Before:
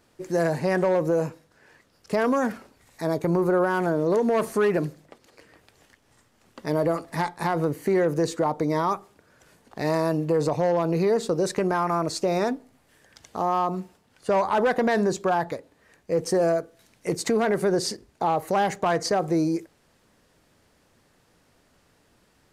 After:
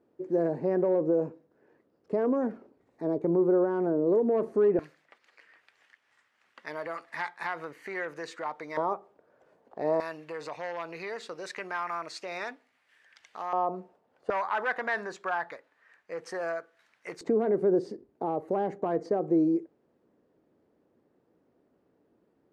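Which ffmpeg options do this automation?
-af "asetnsamples=n=441:p=0,asendcmd='4.79 bandpass f 1900;8.77 bandpass f 570;10 bandpass f 2100;13.53 bandpass f 590;14.3 bandpass f 1600;17.21 bandpass f 350',bandpass=f=360:t=q:w=1.5:csg=0"

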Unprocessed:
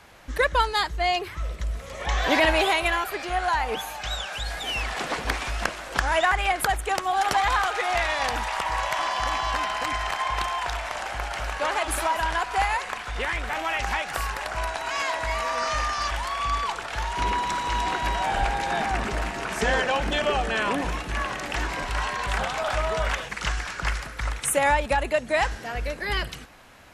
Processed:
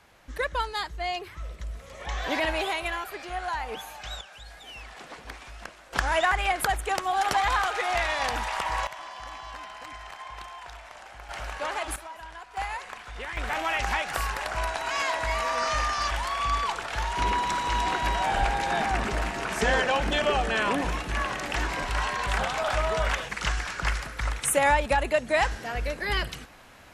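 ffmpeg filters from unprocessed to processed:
-af "asetnsamples=n=441:p=0,asendcmd='4.21 volume volume -14.5dB;5.93 volume volume -2dB;8.87 volume volume -14dB;11.29 volume volume -5.5dB;11.96 volume volume -17dB;12.57 volume volume -8.5dB;13.37 volume volume -0.5dB',volume=-7dB"

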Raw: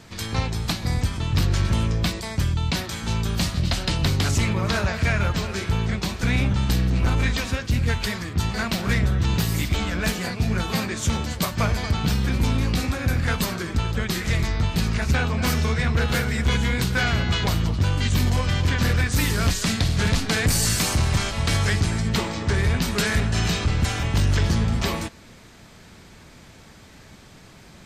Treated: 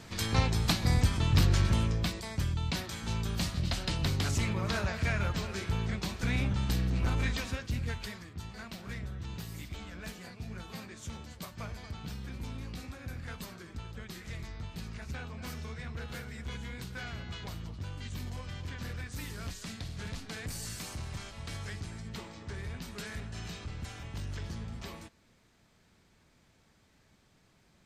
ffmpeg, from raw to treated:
-af "volume=-2.5dB,afade=t=out:st=1.26:d=0.83:silence=0.473151,afade=t=out:st=7.3:d=1.09:silence=0.316228"

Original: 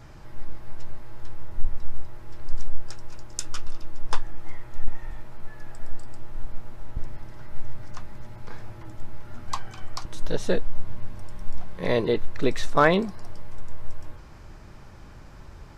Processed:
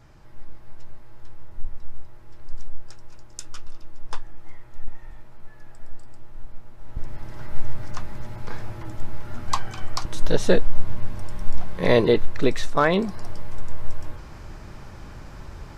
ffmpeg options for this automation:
-af "volume=13.5dB,afade=t=in:st=6.76:d=0.68:silence=0.266073,afade=t=out:st=12.04:d=0.83:silence=0.398107,afade=t=in:st=12.87:d=0.3:silence=0.421697"

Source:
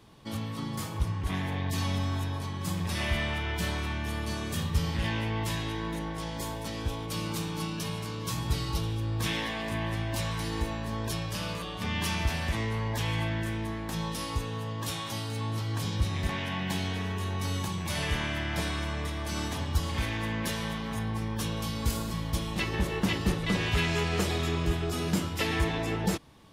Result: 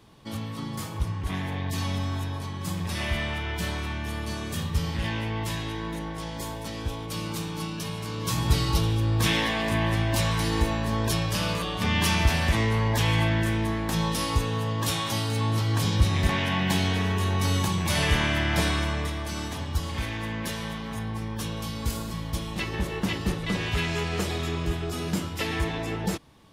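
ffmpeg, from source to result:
-af "volume=7dB,afade=t=in:st=7.97:d=0.52:silence=0.501187,afade=t=out:st=18.68:d=0.69:silence=0.446684"

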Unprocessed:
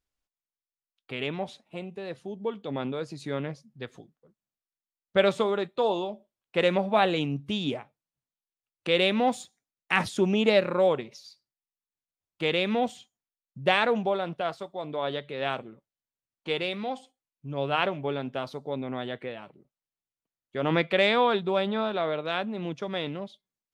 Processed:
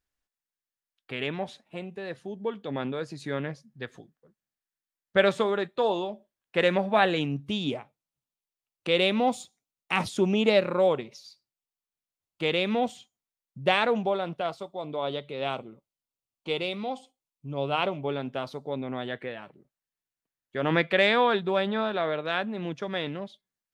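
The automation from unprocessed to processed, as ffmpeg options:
-af "asetnsamples=n=441:p=0,asendcmd='7.43 equalizer g -3.5;9.18 equalizer g -10;10.12 equalizer g -2.5;14.46 equalizer g -11;18.09 equalizer g -0.5;19.08 equalizer g 6',equalizer=f=1.7k:t=o:w=0.35:g=6.5"

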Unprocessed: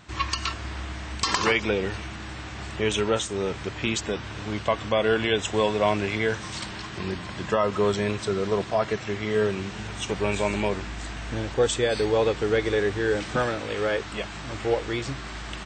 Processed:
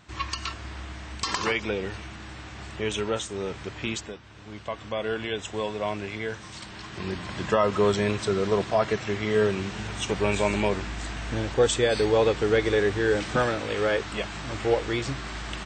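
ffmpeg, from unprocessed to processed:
-af "volume=12dB,afade=t=out:st=3.93:d=0.26:silence=0.281838,afade=t=in:st=4.19:d=0.81:silence=0.398107,afade=t=in:st=6.64:d=0.75:silence=0.398107"

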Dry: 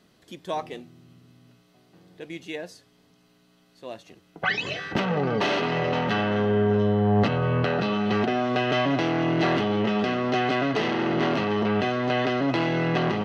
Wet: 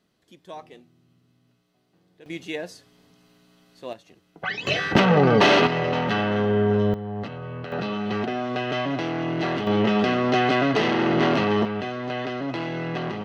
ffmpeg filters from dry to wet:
-af "asetnsamples=n=441:p=0,asendcmd='2.26 volume volume 3dB;3.93 volume volume -4dB;4.67 volume volume 8dB;5.67 volume volume 1dB;6.94 volume volume -11dB;7.72 volume volume -3dB;9.67 volume volume 3.5dB;11.65 volume volume -5dB',volume=-9.5dB"

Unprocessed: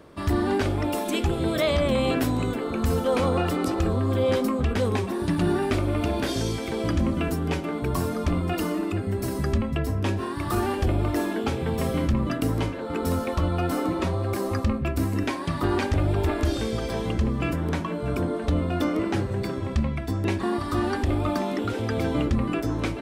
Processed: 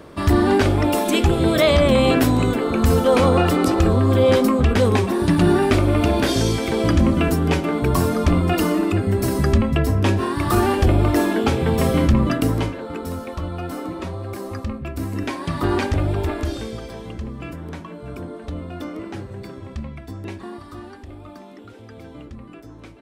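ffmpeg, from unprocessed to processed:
-af "volume=15dB,afade=t=out:st=12.21:d=0.85:silence=0.281838,afade=t=in:st=14.89:d=0.83:silence=0.421697,afade=t=out:st=15.72:d=1.24:silence=0.298538,afade=t=out:st=20.2:d=0.77:silence=0.398107"

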